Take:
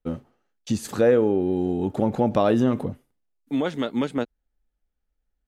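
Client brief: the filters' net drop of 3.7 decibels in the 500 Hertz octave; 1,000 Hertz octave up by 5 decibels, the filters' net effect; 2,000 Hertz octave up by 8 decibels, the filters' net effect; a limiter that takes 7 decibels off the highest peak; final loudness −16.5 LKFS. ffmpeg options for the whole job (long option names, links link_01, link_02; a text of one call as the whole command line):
ffmpeg -i in.wav -af "equalizer=frequency=500:width_type=o:gain=-6.5,equalizer=frequency=1000:width_type=o:gain=7,equalizer=frequency=2000:width_type=o:gain=8.5,volume=10dB,alimiter=limit=-3.5dB:level=0:latency=1" out.wav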